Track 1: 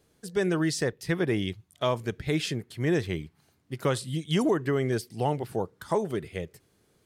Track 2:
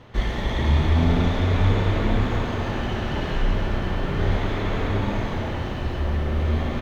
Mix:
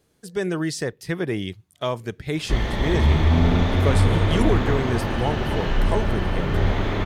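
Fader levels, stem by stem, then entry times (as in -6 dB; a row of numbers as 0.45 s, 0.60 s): +1.0 dB, +1.5 dB; 0.00 s, 2.35 s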